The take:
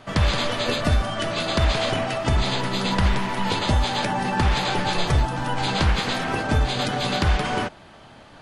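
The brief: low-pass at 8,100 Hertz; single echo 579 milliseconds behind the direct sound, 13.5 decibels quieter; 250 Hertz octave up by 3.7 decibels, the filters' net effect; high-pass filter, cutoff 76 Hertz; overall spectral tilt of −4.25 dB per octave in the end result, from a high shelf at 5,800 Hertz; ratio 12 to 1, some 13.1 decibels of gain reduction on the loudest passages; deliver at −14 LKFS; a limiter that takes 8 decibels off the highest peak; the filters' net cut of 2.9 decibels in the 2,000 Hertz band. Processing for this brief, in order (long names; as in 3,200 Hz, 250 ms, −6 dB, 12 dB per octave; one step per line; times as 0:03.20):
high-pass filter 76 Hz
low-pass filter 8,100 Hz
parametric band 250 Hz +5 dB
parametric band 2,000 Hz −3 dB
high-shelf EQ 5,800 Hz −7 dB
downward compressor 12 to 1, threshold −30 dBFS
brickwall limiter −27.5 dBFS
single-tap delay 579 ms −13.5 dB
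level +22.5 dB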